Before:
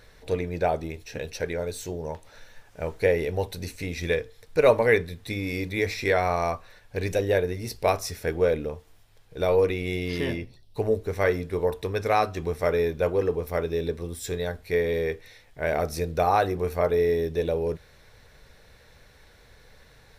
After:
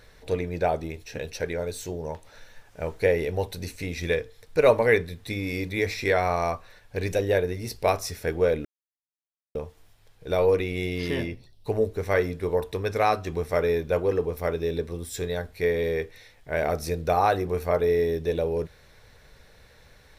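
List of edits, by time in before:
8.65 insert silence 0.90 s

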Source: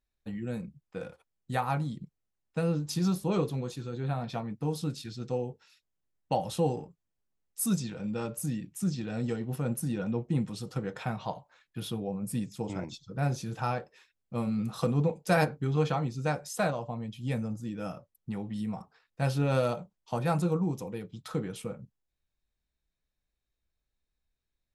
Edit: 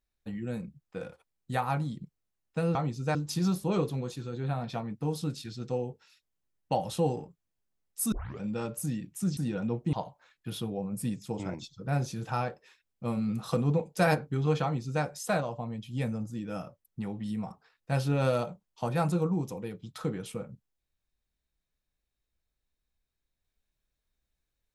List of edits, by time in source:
7.72 tape start 0.28 s
8.97–9.81 cut
10.37–11.23 cut
15.93–16.33 copy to 2.75

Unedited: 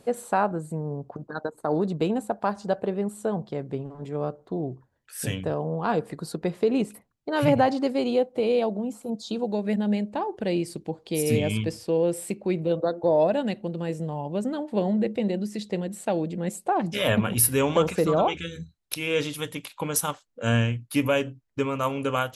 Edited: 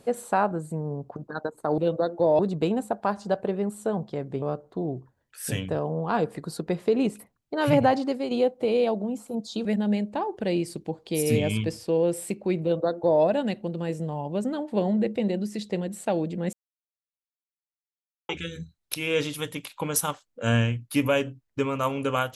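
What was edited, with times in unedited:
3.81–4.17 cut
7.68–8.06 fade out, to -6 dB
9.4–9.65 cut
12.62–13.23 copy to 1.78
16.53–18.29 mute

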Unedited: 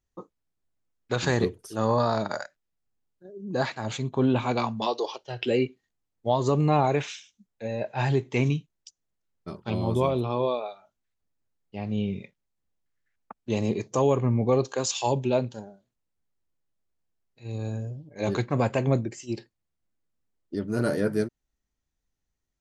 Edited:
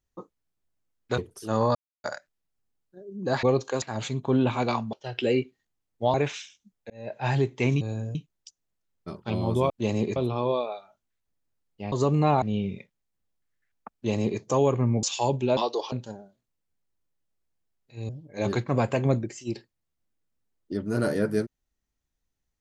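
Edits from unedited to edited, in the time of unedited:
1.18–1.46 cut
2.03–2.32 mute
4.82–5.17 move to 15.4
6.38–6.88 move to 11.86
7.64–7.97 fade in
13.38–13.84 copy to 10.1
14.47–14.86 move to 3.71
17.57–17.91 move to 8.55

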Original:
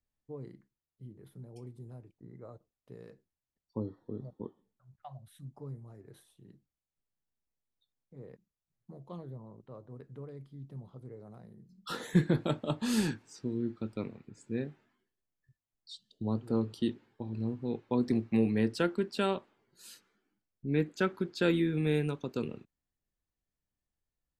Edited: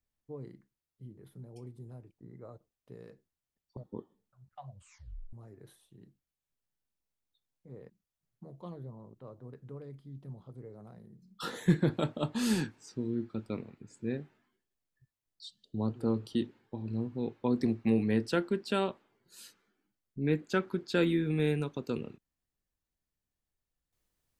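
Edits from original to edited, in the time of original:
3.77–4.24 cut
5.16 tape stop 0.64 s

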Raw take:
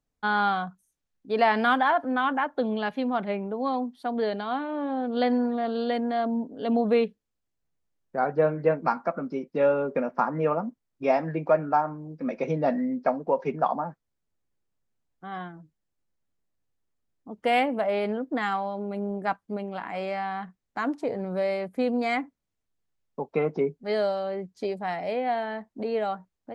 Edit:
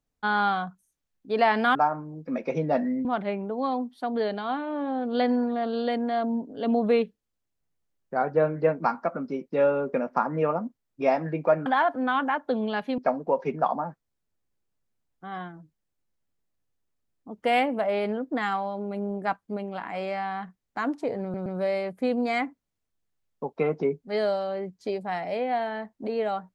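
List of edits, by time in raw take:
1.75–3.07 swap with 11.68–12.98
21.22 stutter 0.12 s, 3 plays

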